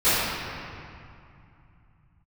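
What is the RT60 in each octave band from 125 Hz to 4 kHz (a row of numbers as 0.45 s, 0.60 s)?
no reading, 3.4 s, 2.4 s, 2.7 s, 2.3 s, 1.7 s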